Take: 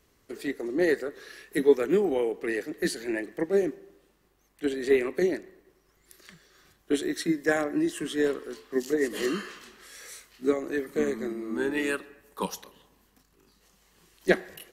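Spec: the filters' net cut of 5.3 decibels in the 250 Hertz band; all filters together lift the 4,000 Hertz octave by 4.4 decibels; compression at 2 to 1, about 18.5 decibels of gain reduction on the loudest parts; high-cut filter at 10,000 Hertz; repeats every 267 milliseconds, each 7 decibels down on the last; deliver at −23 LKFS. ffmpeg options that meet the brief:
ffmpeg -i in.wav -af "lowpass=10000,equalizer=frequency=250:width_type=o:gain=-8,equalizer=frequency=4000:width_type=o:gain=5.5,acompressor=threshold=-52dB:ratio=2,aecho=1:1:267|534|801|1068|1335:0.447|0.201|0.0905|0.0407|0.0183,volume=21.5dB" out.wav

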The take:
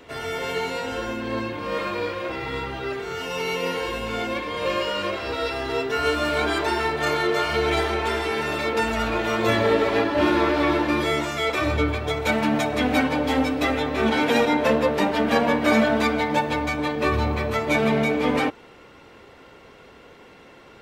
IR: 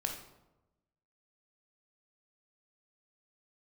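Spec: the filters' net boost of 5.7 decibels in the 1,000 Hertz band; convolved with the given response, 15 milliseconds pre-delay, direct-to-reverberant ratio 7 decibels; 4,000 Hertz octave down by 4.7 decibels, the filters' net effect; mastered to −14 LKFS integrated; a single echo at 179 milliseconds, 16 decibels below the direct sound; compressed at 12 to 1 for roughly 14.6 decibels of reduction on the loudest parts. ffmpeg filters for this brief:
-filter_complex "[0:a]equalizer=frequency=1000:width_type=o:gain=7.5,equalizer=frequency=4000:width_type=o:gain=-7,acompressor=threshold=-28dB:ratio=12,aecho=1:1:179:0.158,asplit=2[link_01][link_02];[1:a]atrim=start_sample=2205,adelay=15[link_03];[link_02][link_03]afir=irnorm=-1:irlink=0,volume=-9dB[link_04];[link_01][link_04]amix=inputs=2:normalize=0,volume=17dB"

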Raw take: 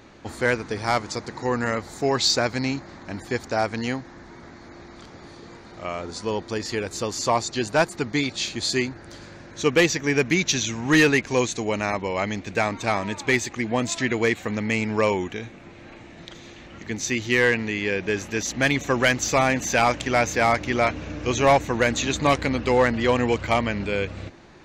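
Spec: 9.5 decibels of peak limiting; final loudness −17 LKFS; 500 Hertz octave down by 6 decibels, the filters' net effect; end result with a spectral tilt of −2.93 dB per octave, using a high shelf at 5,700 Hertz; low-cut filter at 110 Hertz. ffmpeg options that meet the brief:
ffmpeg -i in.wav -af "highpass=110,equalizer=frequency=500:width_type=o:gain=-7.5,highshelf=frequency=5700:gain=6,volume=11.5dB,alimiter=limit=-5dB:level=0:latency=1" out.wav

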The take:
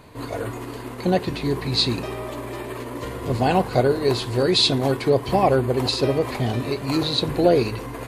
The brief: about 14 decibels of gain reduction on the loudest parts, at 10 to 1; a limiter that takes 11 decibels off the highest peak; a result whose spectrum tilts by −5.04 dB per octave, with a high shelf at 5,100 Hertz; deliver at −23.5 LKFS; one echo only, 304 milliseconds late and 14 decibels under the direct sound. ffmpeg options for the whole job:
ffmpeg -i in.wav -af "highshelf=frequency=5100:gain=6.5,acompressor=threshold=-27dB:ratio=10,alimiter=level_in=4dB:limit=-24dB:level=0:latency=1,volume=-4dB,aecho=1:1:304:0.2,volume=12.5dB" out.wav

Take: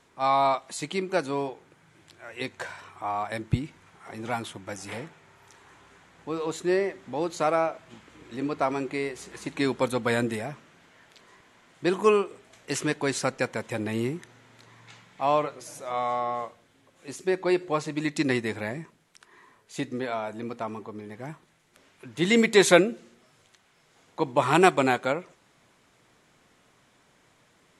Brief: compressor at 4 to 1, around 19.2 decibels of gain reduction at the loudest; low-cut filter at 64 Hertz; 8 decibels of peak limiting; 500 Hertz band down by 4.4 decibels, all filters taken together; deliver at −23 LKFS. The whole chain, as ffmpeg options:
ffmpeg -i in.wav -af "highpass=64,equalizer=frequency=500:width_type=o:gain=-6,acompressor=threshold=-39dB:ratio=4,volume=20.5dB,alimiter=limit=-9dB:level=0:latency=1" out.wav

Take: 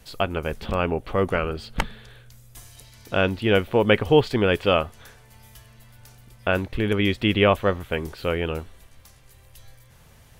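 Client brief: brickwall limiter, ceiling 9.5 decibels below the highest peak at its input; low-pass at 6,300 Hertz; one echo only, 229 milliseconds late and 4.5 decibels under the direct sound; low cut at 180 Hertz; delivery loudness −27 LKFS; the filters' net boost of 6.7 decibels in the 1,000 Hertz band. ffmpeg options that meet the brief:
ffmpeg -i in.wav -af "highpass=180,lowpass=6300,equalizer=frequency=1000:width_type=o:gain=9,alimiter=limit=-8dB:level=0:latency=1,aecho=1:1:229:0.596,volume=-3.5dB" out.wav

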